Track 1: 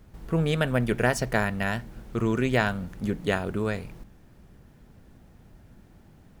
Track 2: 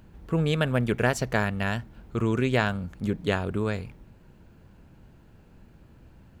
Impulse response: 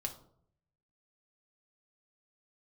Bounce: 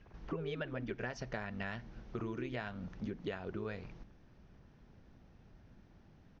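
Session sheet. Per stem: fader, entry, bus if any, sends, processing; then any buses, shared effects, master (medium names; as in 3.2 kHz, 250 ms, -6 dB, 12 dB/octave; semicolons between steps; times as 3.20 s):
-7.0 dB, 0.00 s, no send, elliptic low-pass 6 kHz, stop band 40 dB
0.0 dB, 0.3 ms, no send, formants replaced by sine waves; auto duck -14 dB, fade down 1.25 s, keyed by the first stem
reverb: none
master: compression 6:1, threshold -37 dBFS, peak gain reduction 13 dB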